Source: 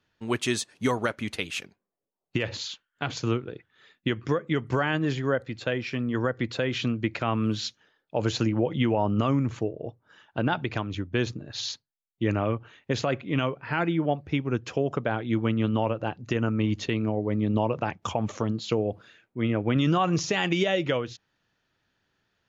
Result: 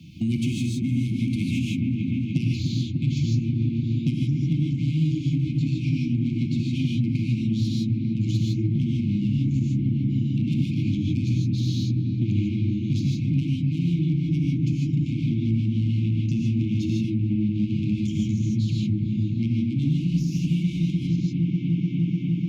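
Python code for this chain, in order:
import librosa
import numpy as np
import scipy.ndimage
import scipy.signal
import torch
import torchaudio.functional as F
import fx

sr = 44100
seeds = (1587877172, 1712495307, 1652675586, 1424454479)

y = fx.echo_wet_lowpass(x, sr, ms=298, feedback_pct=70, hz=1400.0, wet_db=-6.5)
y = 10.0 ** (-25.0 / 20.0) * np.tanh(y / 10.0 ** (-25.0 / 20.0))
y = scipy.signal.sosfilt(scipy.signal.butter(4, 52.0, 'highpass', fs=sr, output='sos'), y)
y = fx.peak_eq(y, sr, hz=160.0, db=13.5, octaves=0.56)
y = fx.rev_gated(y, sr, seeds[0], gate_ms=180, shape='rising', drr_db=-3.5)
y = fx.rider(y, sr, range_db=10, speed_s=0.5)
y = fx.brickwall_bandstop(y, sr, low_hz=340.0, high_hz=2100.0)
y = fx.low_shelf(y, sr, hz=430.0, db=9.5)
y = fx.band_squash(y, sr, depth_pct=70)
y = y * 10.0 ** (-8.0 / 20.0)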